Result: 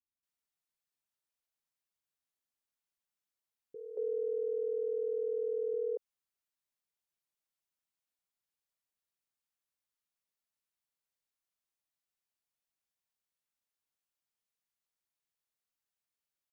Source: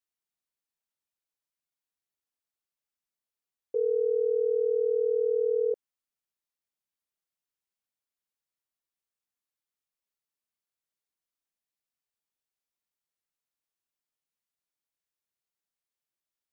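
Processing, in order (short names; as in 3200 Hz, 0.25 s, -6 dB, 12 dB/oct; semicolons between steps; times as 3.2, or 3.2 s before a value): limiter -25 dBFS, peak gain reduction 5 dB; bands offset in time lows, highs 0.23 s, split 330 Hz; gain -1.5 dB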